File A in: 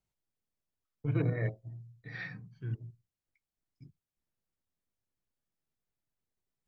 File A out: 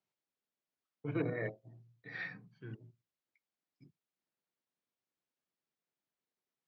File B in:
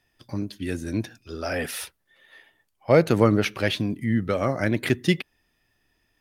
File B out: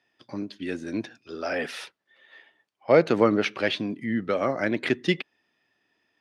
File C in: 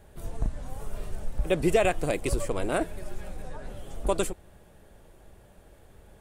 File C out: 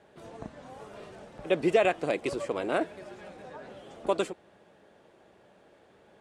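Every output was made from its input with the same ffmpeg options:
-af "highpass=230,lowpass=4700"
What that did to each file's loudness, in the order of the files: −4.5, −1.5, +0.5 LU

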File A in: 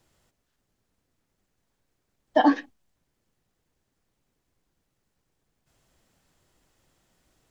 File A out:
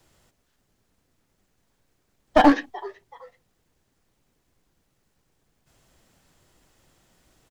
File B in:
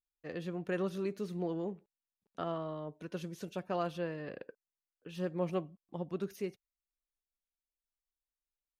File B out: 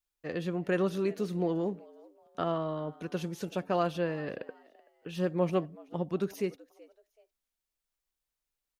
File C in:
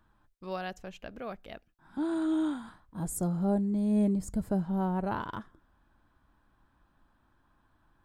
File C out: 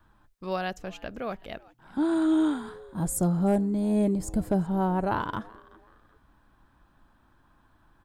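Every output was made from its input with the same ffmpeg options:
-filter_complex "[0:a]adynamicequalizer=threshold=0.00891:dfrequency=210:dqfactor=3.5:tfrequency=210:tqfactor=3.5:attack=5:release=100:ratio=0.375:range=3:mode=cutabove:tftype=bell,asplit=3[link_01][link_02][link_03];[link_02]adelay=379,afreqshift=110,volume=-23dB[link_04];[link_03]adelay=758,afreqshift=220,volume=-33.2dB[link_05];[link_01][link_04][link_05]amix=inputs=3:normalize=0,aeval=exprs='clip(val(0),-1,0.0891)':channel_layout=same,volume=6dB"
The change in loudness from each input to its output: +4.0, +6.0, +4.0 LU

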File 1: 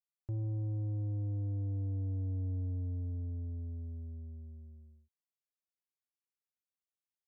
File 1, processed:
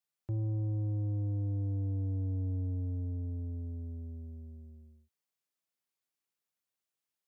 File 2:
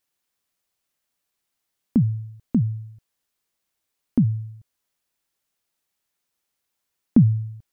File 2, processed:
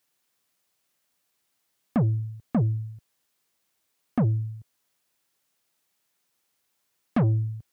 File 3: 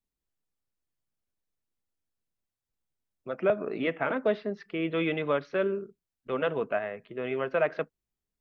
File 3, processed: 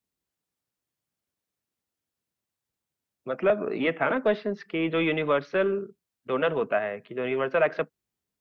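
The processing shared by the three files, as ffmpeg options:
-filter_complex "[0:a]highpass=89,acrossover=split=710[link_01][link_02];[link_01]asoftclip=type=tanh:threshold=-23.5dB[link_03];[link_03][link_02]amix=inputs=2:normalize=0,volume=4.5dB"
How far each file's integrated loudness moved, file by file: +2.0, −4.0, +3.5 LU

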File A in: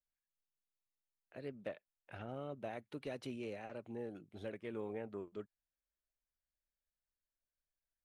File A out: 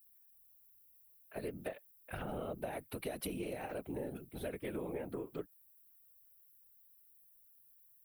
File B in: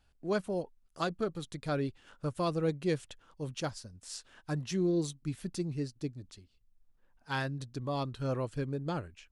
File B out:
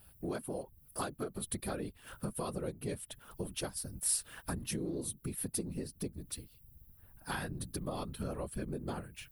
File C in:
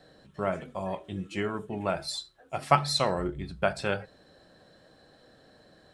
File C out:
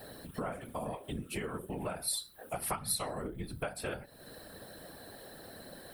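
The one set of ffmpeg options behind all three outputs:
-af "afftfilt=real='hypot(re,im)*cos(2*PI*random(0))':imag='hypot(re,im)*sin(2*PI*random(1))':win_size=512:overlap=0.75,acompressor=threshold=-50dB:ratio=5,aexciter=amount=13.3:drive=7:freq=9700,volume=13dB"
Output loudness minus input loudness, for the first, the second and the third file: +3.5, −3.5, −8.5 LU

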